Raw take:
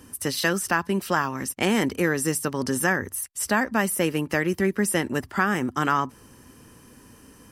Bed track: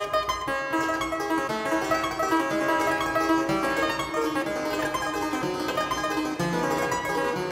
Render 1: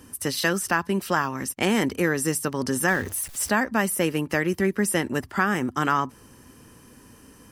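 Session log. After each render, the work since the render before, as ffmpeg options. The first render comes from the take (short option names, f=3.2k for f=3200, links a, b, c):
-filter_complex "[0:a]asettb=1/sr,asplit=3[a][b][c];[a]atrim=end=2.884[d];[b]atrim=start=2.88:end=3.49,asetpts=PTS-STARTPTS,afade=t=in:d=0.004:c=qsin,afade=t=out:st=0.606:d=0.004:c=qsin,aeval=exprs='val(0)+0.5*0.0178*sgn(val(0))':c=same[e];[c]atrim=start=3.486[f];[d][e]acrossfade=d=0.004:c1=hsin:c2=qsin[g];[g][f]acrossfade=d=0.004:c1=qsin:c2=hsin"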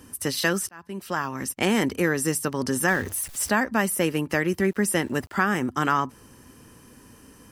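-filter_complex "[0:a]asettb=1/sr,asplit=3[a][b][c];[a]atrim=end=4.594[d];[b]atrim=start=4.59:end=5.37,asetpts=PTS-STARTPTS,afade=t=in:d=0.004:c=qsin,afade=t=out:st=0.776:d=0.004:c=qsin,aeval=exprs='val(0)*gte(abs(val(0)),0.00355)':c=same[e];[c]atrim=start=5.366[f];[d][e]acrossfade=d=0.004:c1=hsin:c2=qsin[g];[g][f]acrossfade=d=0.004:c1=qsin:c2=hsin,asplit=2[h][i];[h]atrim=end=0.69,asetpts=PTS-STARTPTS,afade=t=out:st=0.686:d=0.004:c=hsin[j];[i]atrim=start=0.69,asetpts=PTS-STARTPTS,afade=t=in:d=0.78[k];[j][k]concat=n=2:v=0:a=1"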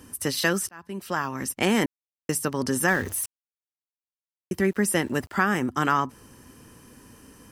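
-filter_complex "[0:a]asplit=5[a][b][c][d][e];[a]atrim=end=1.86,asetpts=PTS-STARTPTS,afade=t=out:st=1.856:d=0.004:c=hsin[f];[b]atrim=start=1.86:end=2.29,asetpts=PTS-STARTPTS,volume=0[g];[c]atrim=start=2.29:end=3.26,asetpts=PTS-STARTPTS,afade=t=in:d=0.004:c=hsin,afade=t=out:st=0.966:d=0.004:c=hsin[h];[d]atrim=start=3.26:end=4.51,asetpts=PTS-STARTPTS,volume=0[i];[e]atrim=start=4.51,asetpts=PTS-STARTPTS,afade=t=in:d=0.004:c=hsin[j];[f][g][h][i][j]concat=n=5:v=0:a=1"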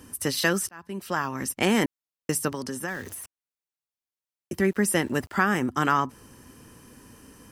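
-filter_complex "[0:a]asettb=1/sr,asplit=3[a][b][c];[a]atrim=end=2.524[d];[b]atrim=start=2.52:end=4.53,asetpts=PTS-STARTPTS,afade=t=in:d=0.004:c=qsin,afade=t=out:st=2.006:d=0.004:c=qsin,acrossover=split=170|2600[e][f][g];[e]acompressor=threshold=-47dB:ratio=4[h];[f]acompressor=threshold=-32dB:ratio=4[i];[g]acompressor=threshold=-39dB:ratio=4[j];[h][i][j]amix=inputs=3:normalize=0[k];[c]atrim=start=4.526[l];[d][k]acrossfade=d=0.004:c1=hsin:c2=qsin[m];[m][l]acrossfade=d=0.004:c1=qsin:c2=hsin"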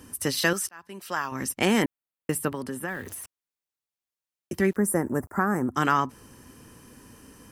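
-filter_complex "[0:a]asettb=1/sr,asplit=3[a][b][c];[a]atrim=end=0.534[d];[b]atrim=start=0.53:end=1.32,asetpts=PTS-STARTPTS,afade=t=in:d=0.004:c=qsin,afade=t=out:st=0.786:d=0.004:c=qsin,lowshelf=f=390:g=-11[e];[c]atrim=start=1.316[f];[d][e]acrossfade=d=0.004:c1=hsin:c2=qsin[g];[g][f]acrossfade=d=0.004:c1=qsin:c2=hsin,asettb=1/sr,asplit=3[h][i][j];[h]atrim=end=1.824[k];[i]atrim=start=1.82:end=3.08,asetpts=PTS-STARTPTS,afade=t=in:d=0.004:c=qsin,afade=t=out:st=1.256:d=0.004:c=qsin,equalizer=f=5.8k:t=o:w=0.77:g=-13.5[l];[j]atrim=start=3.076[m];[k][l]acrossfade=d=0.004:c1=hsin:c2=qsin[n];[n][m]acrossfade=d=0.004:c1=qsin:c2=hsin,asettb=1/sr,asplit=3[o][p][q];[o]atrim=end=4.764[r];[p]atrim=start=4.76:end=5.74,asetpts=PTS-STARTPTS,afade=t=in:d=0.004:c=qsin,afade=t=out:st=0.976:d=0.004:c=qsin,asuperstop=centerf=3500:order=4:qfactor=0.5[s];[q]atrim=start=5.736[t];[r][s]acrossfade=d=0.004:c1=hsin:c2=qsin[u];[u][t]acrossfade=d=0.004:c1=qsin:c2=hsin"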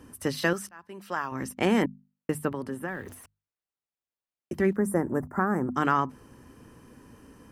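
-af "highshelf=f=2.8k:g=-11.5,bandreject=f=50:t=h:w=6,bandreject=f=100:t=h:w=6,bandreject=f=150:t=h:w=6,bandreject=f=200:t=h:w=6,bandreject=f=250:t=h:w=6"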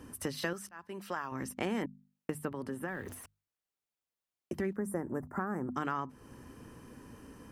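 -af "acompressor=threshold=-36dB:ratio=2.5"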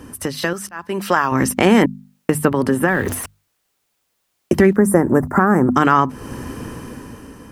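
-af "dynaudnorm=f=180:g=9:m=10dB,alimiter=level_in=12dB:limit=-1dB:release=50:level=0:latency=1"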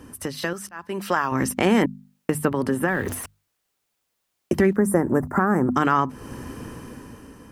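-af "volume=-6dB"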